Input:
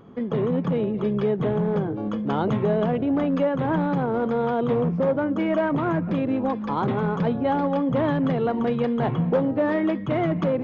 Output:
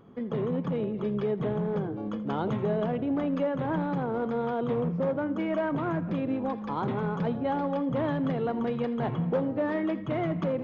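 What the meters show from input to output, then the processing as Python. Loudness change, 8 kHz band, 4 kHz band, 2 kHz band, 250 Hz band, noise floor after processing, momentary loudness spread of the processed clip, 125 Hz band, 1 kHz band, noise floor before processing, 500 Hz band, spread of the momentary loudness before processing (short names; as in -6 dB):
-6.0 dB, n/a, -6.0 dB, -6.0 dB, -6.0 dB, -36 dBFS, 3 LU, -6.0 dB, -6.0 dB, -30 dBFS, -6.0 dB, 3 LU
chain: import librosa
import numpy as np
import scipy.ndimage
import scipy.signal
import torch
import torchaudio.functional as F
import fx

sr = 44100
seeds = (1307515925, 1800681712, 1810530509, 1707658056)

y = fx.echo_feedback(x, sr, ms=82, feedback_pct=44, wet_db=-17)
y = y * librosa.db_to_amplitude(-6.0)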